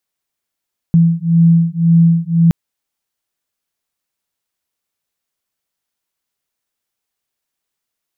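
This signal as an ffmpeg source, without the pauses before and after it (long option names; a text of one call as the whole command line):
ffmpeg -f lavfi -i "aevalsrc='0.282*(sin(2*PI*166*t)+sin(2*PI*167.9*t))':duration=1.57:sample_rate=44100" out.wav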